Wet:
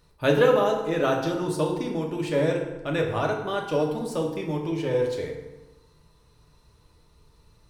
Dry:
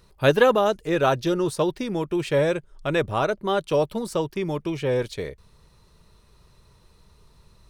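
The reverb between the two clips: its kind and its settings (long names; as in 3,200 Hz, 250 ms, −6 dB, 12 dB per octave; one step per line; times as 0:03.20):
feedback delay network reverb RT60 1.1 s, low-frequency decay 1.1×, high-frequency decay 0.65×, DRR 0 dB
level −5.5 dB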